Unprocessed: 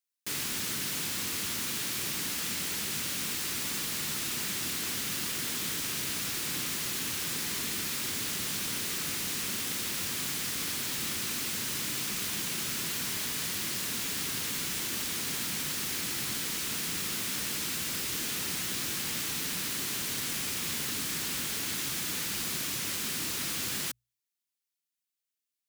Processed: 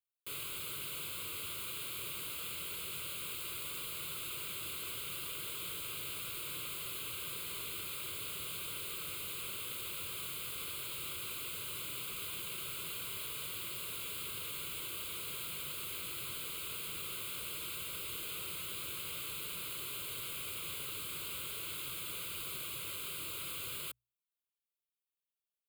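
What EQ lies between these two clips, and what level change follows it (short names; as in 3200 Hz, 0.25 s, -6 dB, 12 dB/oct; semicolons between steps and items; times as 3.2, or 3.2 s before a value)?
fixed phaser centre 1200 Hz, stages 8; -5.5 dB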